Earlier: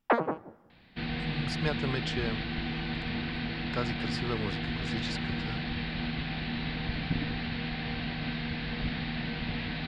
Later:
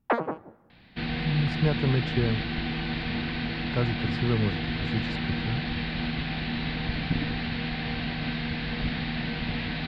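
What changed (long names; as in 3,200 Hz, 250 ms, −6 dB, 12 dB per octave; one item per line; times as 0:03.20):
speech: add spectral tilt −4 dB per octave
second sound +3.5 dB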